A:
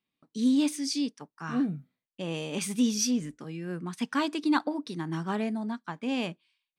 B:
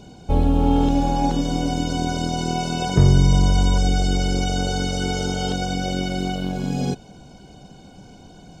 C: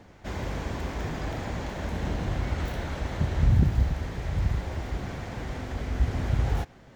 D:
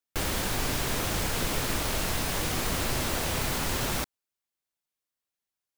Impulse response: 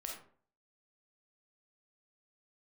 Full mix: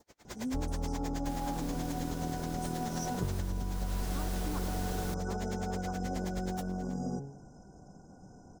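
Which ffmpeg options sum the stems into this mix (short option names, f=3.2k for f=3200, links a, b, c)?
-filter_complex "[0:a]volume=-11.5dB[a];[1:a]bandreject=f=69.28:t=h:w=4,bandreject=f=138.56:t=h:w=4,bandreject=f=207.84:t=h:w=4,bandreject=f=277.12:t=h:w=4,bandreject=f=346.4:t=h:w=4,bandreject=f=415.68:t=h:w=4,bandreject=f=484.96:t=h:w=4,bandreject=f=554.24:t=h:w=4,bandreject=f=623.52:t=h:w=4,bandreject=f=692.8:t=h:w=4,bandreject=f=762.08:t=h:w=4,bandreject=f=831.36:t=h:w=4,bandreject=f=900.64:t=h:w=4,bandreject=f=969.92:t=h:w=4,bandreject=f=1.0392k:t=h:w=4,acrossover=split=2600[b][c];[c]acompressor=threshold=-38dB:ratio=4:attack=1:release=60[d];[b][d]amix=inputs=2:normalize=0,lowpass=8.1k,adelay=250,volume=-8.5dB[e];[2:a]bass=f=250:g=-10,treble=f=4k:g=15,flanger=delay=17.5:depth=7.9:speed=0.47,aeval=exprs='val(0)*pow(10,-35*(0.5-0.5*cos(2*PI*9.4*n/s))/20)':c=same,volume=1dB[f];[3:a]adelay=1100,volume=-4dB,afade=t=in:st=3.83:d=0.32:silence=0.281838[g];[a][e]amix=inputs=2:normalize=0,asuperstop=centerf=2800:order=20:qfactor=0.77,acompressor=threshold=-31dB:ratio=6,volume=0dB[h];[f][g]amix=inputs=2:normalize=0,adynamicequalizer=threshold=0.00224:dfrequency=2400:dqfactor=1.3:tfrequency=2400:tqfactor=1.3:attack=5:release=100:ratio=0.375:range=2.5:mode=cutabove:tftype=bell,acompressor=threshold=-39dB:ratio=5,volume=0dB[i];[h][i]amix=inputs=2:normalize=0"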